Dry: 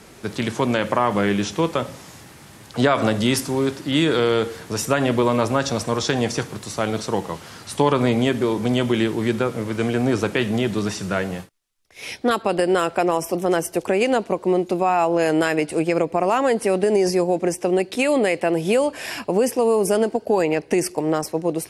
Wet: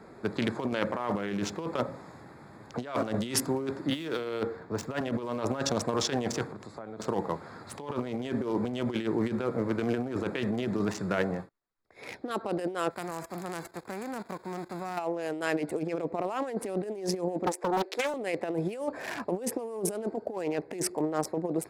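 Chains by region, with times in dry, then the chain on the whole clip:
3.9–5.01 median filter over 5 samples + three-band expander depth 40%
6.49–7 LPF 12000 Hz + compressor 8:1, threshold -34 dBFS
12.9–14.97 spectral whitening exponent 0.3 + level quantiser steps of 16 dB
17.46–18.14 inverse Chebyshev high-pass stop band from 150 Hz, stop band 50 dB + Doppler distortion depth 0.7 ms
whole clip: Wiener smoothing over 15 samples; negative-ratio compressor -23 dBFS, ratio -0.5; low shelf 110 Hz -11.5 dB; gain -5 dB

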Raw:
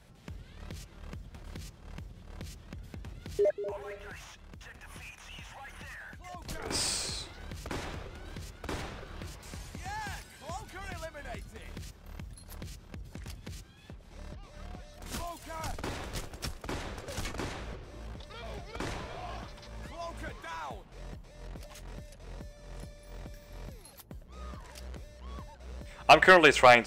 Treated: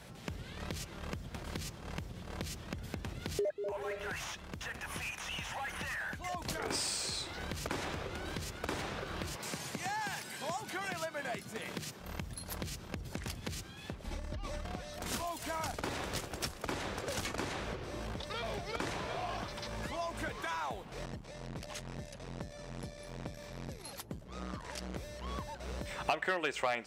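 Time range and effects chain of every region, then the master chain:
9.36–12 HPF 120 Hz 24 dB/oct + upward compressor, threshold -55 dBFS
14.04–14.65 low shelf 110 Hz +11.5 dB + negative-ratio compressor -40 dBFS + comb 3.5 ms, depth 50%
21.05–24.95 LPF 10000 Hz + core saturation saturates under 250 Hz
whole clip: HPF 130 Hz 6 dB/oct; compressor 4:1, threshold -44 dBFS; gain +8.5 dB

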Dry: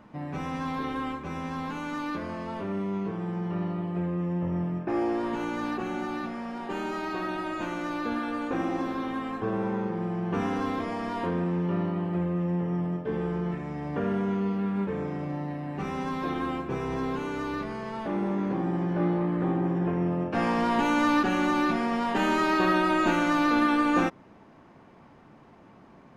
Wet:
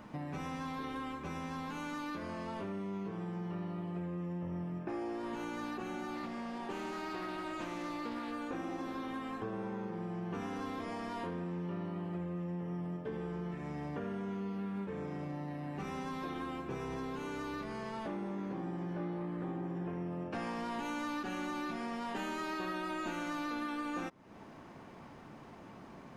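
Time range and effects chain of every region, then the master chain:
6.15–8.32 Butterworth band-stop 1400 Hz, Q 6.8 + Doppler distortion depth 0.23 ms
whole clip: high shelf 4300 Hz +7.5 dB; compressor 4:1, threshold -40 dBFS; gain +1 dB

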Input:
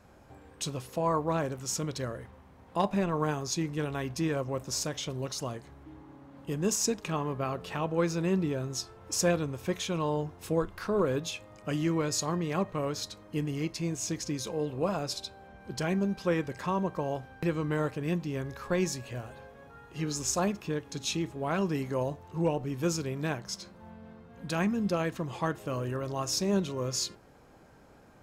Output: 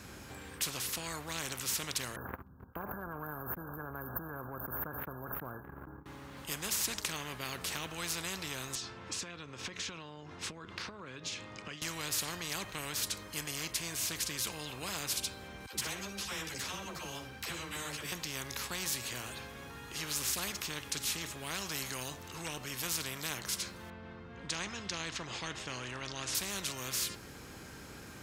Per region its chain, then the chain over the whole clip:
2.16–6.06 brick-wall FIR band-stop 1700–13000 Hz + gate -49 dBFS, range -54 dB + backwards sustainer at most 22 dB/s
8.75–11.82 HPF 140 Hz + air absorption 130 m + compressor 20:1, threshold -41 dBFS
15.66–18.12 dispersion lows, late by 77 ms, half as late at 550 Hz + flutter echo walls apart 10.4 m, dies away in 0.25 s + ensemble effect
23.9–26.35 Bessel low-pass 4800 Hz, order 4 + mismatched tape noise reduction decoder only
whole clip: HPF 71 Hz; passive tone stack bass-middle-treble 6-0-2; spectral compressor 4:1; gain +14 dB

